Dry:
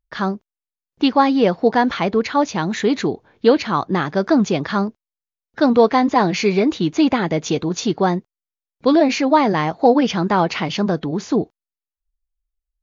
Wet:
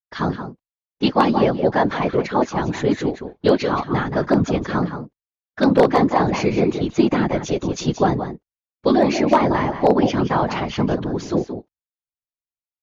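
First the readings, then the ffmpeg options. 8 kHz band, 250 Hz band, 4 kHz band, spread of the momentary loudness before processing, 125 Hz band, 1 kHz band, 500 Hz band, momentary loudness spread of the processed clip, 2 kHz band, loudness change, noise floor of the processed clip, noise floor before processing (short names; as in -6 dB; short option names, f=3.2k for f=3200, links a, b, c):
n/a, -2.0 dB, -4.0 dB, 7 LU, +2.0 dB, -2.0 dB, -1.0 dB, 8 LU, -2.5 dB, -1.5 dB, under -85 dBFS, under -85 dBFS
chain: -filter_complex "[0:a]agate=range=-33dB:threshold=-39dB:ratio=3:detection=peak,adynamicequalizer=threshold=0.0126:dfrequency=4300:dqfactor=0.71:tfrequency=4300:tqfactor=0.71:attack=5:release=100:ratio=0.375:range=3.5:mode=cutabove:tftype=bell,asplit=2[a][b];[b]adelay=174.9,volume=-9dB,highshelf=f=4k:g=-3.94[c];[a][c]amix=inputs=2:normalize=0,afftfilt=real='hypot(re,im)*cos(2*PI*random(0))':imag='hypot(re,im)*sin(2*PI*random(1))':win_size=512:overlap=0.75,aeval=exprs='0.355*(abs(mod(val(0)/0.355+3,4)-2)-1)':c=same,volume=4.5dB"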